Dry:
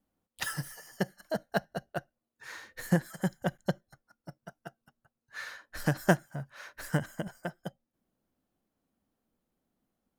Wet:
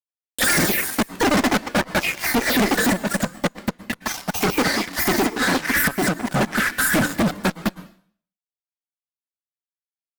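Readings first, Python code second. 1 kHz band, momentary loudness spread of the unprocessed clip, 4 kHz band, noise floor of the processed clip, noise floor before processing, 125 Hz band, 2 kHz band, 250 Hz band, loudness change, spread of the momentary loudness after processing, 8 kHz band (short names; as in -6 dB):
+15.5 dB, 20 LU, +20.5 dB, under -85 dBFS, under -85 dBFS, +6.0 dB, +17.5 dB, +14.0 dB, +14.0 dB, 8 LU, +21.0 dB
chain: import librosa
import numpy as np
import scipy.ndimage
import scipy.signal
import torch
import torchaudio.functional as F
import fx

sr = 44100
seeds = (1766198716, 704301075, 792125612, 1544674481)

p1 = fx.lower_of_two(x, sr, delay_ms=0.52)
p2 = scipy.signal.sosfilt(scipy.signal.butter(2, 120.0, 'highpass', fs=sr, output='sos'), p1)
p3 = fx.peak_eq(p2, sr, hz=6100.0, db=-13.0, octaves=0.29)
p4 = p3 + 0.73 * np.pad(p3, (int(3.7 * sr / 1000.0), 0))[:len(p3)]
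p5 = fx.echo_pitch(p4, sr, ms=139, semitones=3, count=2, db_per_echo=-3.0)
p6 = 10.0 ** (-19.5 / 20.0) * np.tanh(p5 / 10.0 ** (-19.5 / 20.0))
p7 = p5 + (p6 * 10.0 ** (-9.5 / 20.0))
p8 = fx.env_phaser(p7, sr, low_hz=170.0, high_hz=2900.0, full_db=-30.5)
p9 = fx.gate_flip(p8, sr, shuts_db=-14.0, range_db=-28)
p10 = fx.fuzz(p9, sr, gain_db=46.0, gate_db=-55.0)
p11 = fx.rev_plate(p10, sr, seeds[0], rt60_s=0.51, hf_ratio=1.0, predelay_ms=100, drr_db=16.5)
p12 = fx.vibrato_shape(p11, sr, shape='square', rate_hz=4.2, depth_cents=100.0)
y = p12 * 10.0 ** (-2.5 / 20.0)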